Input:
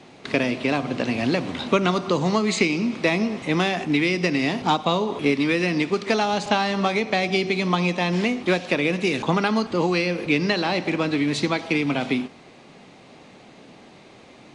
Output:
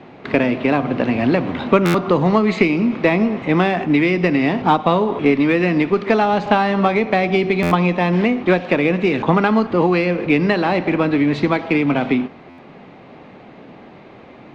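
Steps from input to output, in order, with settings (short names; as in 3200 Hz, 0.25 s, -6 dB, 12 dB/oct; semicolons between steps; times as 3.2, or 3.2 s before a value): LPF 2100 Hz 12 dB/oct; in parallel at -12 dB: one-sided clip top -28.5 dBFS; on the sum: stuck buffer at 1.85/7.62/12.49, samples 512, times 7; gain +5 dB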